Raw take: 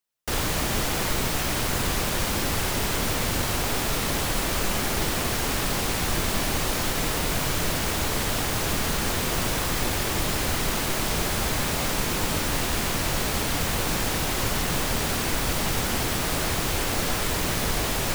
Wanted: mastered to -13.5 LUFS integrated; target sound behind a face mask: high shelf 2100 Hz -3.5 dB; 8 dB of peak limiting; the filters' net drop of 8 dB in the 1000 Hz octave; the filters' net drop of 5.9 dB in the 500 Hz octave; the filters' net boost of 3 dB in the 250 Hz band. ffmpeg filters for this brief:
-af "equalizer=f=250:t=o:g=6.5,equalizer=f=500:t=o:g=-8,equalizer=f=1k:t=o:g=-7.5,alimiter=limit=-19.5dB:level=0:latency=1,highshelf=f=2.1k:g=-3.5,volume=17dB"

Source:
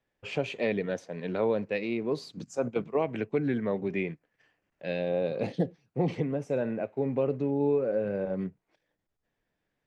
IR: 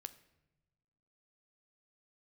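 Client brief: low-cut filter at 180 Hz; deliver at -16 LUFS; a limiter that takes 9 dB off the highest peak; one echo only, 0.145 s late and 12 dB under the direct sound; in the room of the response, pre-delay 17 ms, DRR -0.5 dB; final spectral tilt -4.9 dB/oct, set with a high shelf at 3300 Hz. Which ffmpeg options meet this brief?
-filter_complex "[0:a]highpass=180,highshelf=f=3.3k:g=7.5,alimiter=level_in=0.5dB:limit=-24dB:level=0:latency=1,volume=-0.5dB,aecho=1:1:145:0.251,asplit=2[a][b];[1:a]atrim=start_sample=2205,adelay=17[c];[b][c]afir=irnorm=-1:irlink=0,volume=5.5dB[d];[a][d]amix=inputs=2:normalize=0,volume=15dB"

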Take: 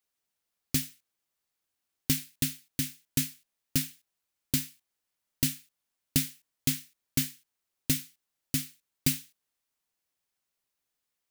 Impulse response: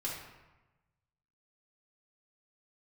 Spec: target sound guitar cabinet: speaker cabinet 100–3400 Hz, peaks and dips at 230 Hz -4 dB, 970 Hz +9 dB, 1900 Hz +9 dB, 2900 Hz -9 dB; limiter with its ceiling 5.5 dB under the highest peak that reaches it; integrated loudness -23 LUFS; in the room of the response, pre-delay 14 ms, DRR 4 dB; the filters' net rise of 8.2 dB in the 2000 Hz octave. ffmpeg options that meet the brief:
-filter_complex "[0:a]equalizer=f=2k:t=o:g=5.5,alimiter=limit=-15dB:level=0:latency=1,asplit=2[a][b];[1:a]atrim=start_sample=2205,adelay=14[c];[b][c]afir=irnorm=-1:irlink=0,volume=-6.5dB[d];[a][d]amix=inputs=2:normalize=0,highpass=100,equalizer=f=230:t=q:w=4:g=-4,equalizer=f=970:t=q:w=4:g=9,equalizer=f=1.9k:t=q:w=4:g=9,equalizer=f=2.9k:t=q:w=4:g=-9,lowpass=f=3.4k:w=0.5412,lowpass=f=3.4k:w=1.3066,volume=15.5dB"

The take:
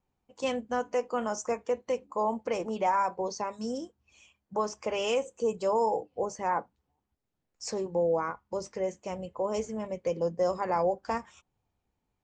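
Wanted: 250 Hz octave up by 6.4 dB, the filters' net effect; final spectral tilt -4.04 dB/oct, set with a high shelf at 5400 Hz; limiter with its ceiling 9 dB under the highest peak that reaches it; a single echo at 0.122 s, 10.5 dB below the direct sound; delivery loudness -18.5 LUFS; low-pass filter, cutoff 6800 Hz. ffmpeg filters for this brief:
-af "lowpass=6.8k,equalizer=f=250:t=o:g=8,highshelf=f=5.4k:g=-6.5,alimiter=limit=-24dB:level=0:latency=1,aecho=1:1:122:0.299,volume=15.5dB"

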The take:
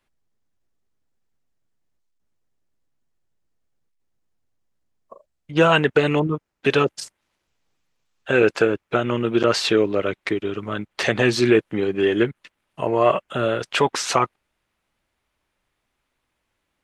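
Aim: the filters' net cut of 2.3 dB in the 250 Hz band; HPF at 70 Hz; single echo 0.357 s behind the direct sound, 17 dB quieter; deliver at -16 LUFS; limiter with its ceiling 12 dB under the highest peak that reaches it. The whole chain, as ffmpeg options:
-af "highpass=70,equalizer=f=250:t=o:g=-3.5,alimiter=limit=-15.5dB:level=0:latency=1,aecho=1:1:357:0.141,volume=10.5dB"

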